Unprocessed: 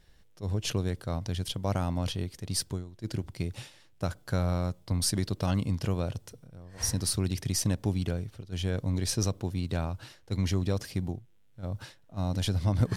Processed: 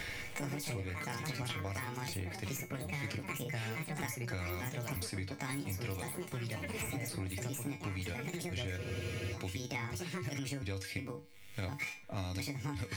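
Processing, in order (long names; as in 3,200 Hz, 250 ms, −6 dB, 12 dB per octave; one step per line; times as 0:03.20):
pitch shifter gated in a rhythm +6 semitones, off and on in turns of 354 ms
low-shelf EQ 190 Hz −7 dB
tuned comb filter 96 Hz, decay 0.25 s, harmonics odd, mix 80%
delay with pitch and tempo change per echo 98 ms, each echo +4 semitones, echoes 3, each echo −6 dB
downward compressor 2 to 1, threshold −56 dBFS, peak gain reduction 13.5 dB
parametric band 2,200 Hz +14.5 dB 0.48 octaves
frozen spectrum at 0:08.79, 0.54 s
multiband upward and downward compressor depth 100%
level +10.5 dB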